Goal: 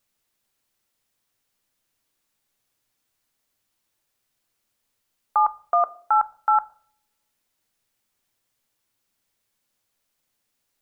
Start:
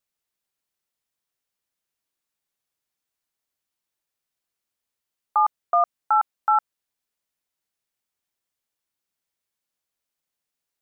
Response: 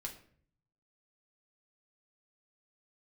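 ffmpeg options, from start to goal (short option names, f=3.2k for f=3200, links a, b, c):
-filter_complex "[0:a]alimiter=limit=-19.5dB:level=0:latency=1:release=25,asplit=2[a][b];[1:a]atrim=start_sample=2205,lowshelf=f=420:g=11[c];[b][c]afir=irnorm=-1:irlink=0,volume=-9.5dB[d];[a][d]amix=inputs=2:normalize=0,volume=7dB"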